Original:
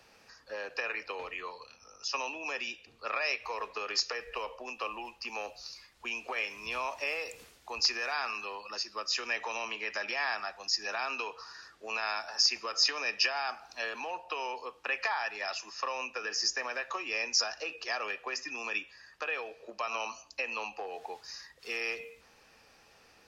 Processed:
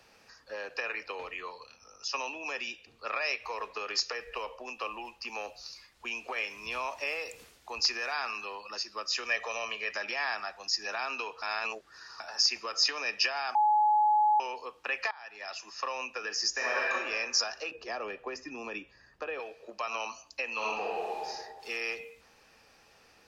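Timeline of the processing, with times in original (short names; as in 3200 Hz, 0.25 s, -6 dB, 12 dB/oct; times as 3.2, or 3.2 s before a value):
9.25–9.92 comb 1.7 ms, depth 61%
11.42–12.2 reverse
13.55–14.4 bleep 846 Hz -21 dBFS
15.11–15.79 fade in, from -22 dB
16.51–16.91 reverb throw, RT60 1.5 s, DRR -5.5 dB
17.71–19.4 tilt shelf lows +8.5 dB, about 780 Hz
20.53–21.27 reverb throw, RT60 1.4 s, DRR -5 dB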